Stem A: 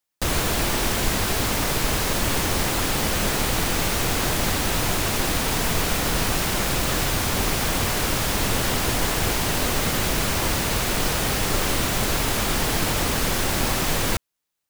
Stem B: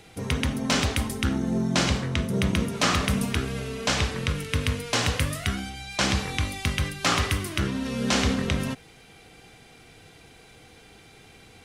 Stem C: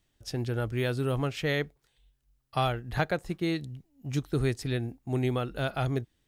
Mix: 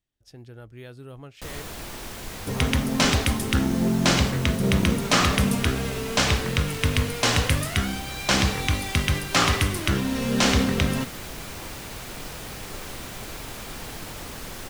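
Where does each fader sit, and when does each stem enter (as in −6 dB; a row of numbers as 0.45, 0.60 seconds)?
−14.0, +3.0, −13.0 decibels; 1.20, 2.30, 0.00 seconds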